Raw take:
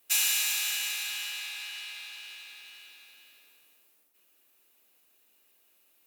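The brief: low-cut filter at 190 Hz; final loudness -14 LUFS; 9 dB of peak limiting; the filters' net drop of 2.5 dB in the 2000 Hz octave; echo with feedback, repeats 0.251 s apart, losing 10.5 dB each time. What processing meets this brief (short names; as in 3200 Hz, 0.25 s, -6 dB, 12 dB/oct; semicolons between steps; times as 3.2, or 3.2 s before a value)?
HPF 190 Hz; bell 2000 Hz -3.5 dB; limiter -23 dBFS; feedback echo 0.251 s, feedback 30%, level -10.5 dB; gain +19.5 dB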